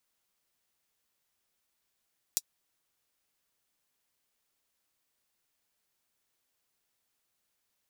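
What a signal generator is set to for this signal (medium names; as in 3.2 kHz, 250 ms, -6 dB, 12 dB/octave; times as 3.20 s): closed hi-hat, high-pass 5.3 kHz, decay 0.05 s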